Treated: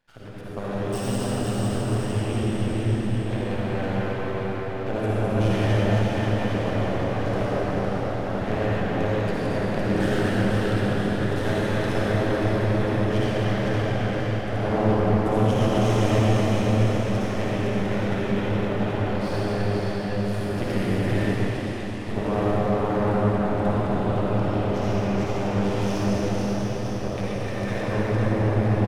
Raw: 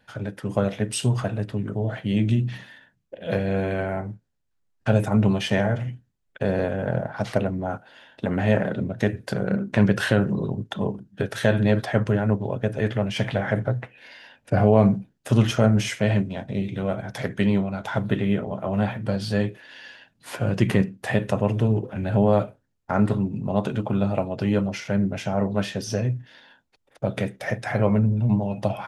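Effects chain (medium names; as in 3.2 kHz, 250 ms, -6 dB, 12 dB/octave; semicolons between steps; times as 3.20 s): backward echo that repeats 132 ms, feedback 60%, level -3.5 dB; bouncing-ball echo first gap 510 ms, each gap 0.9×, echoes 5; half-wave rectifier; 21.25–22.09 s: band-pass filter 5.5 kHz, Q 0.75; reverberation RT60 4.7 s, pre-delay 48 ms, DRR -8 dB; trim -9 dB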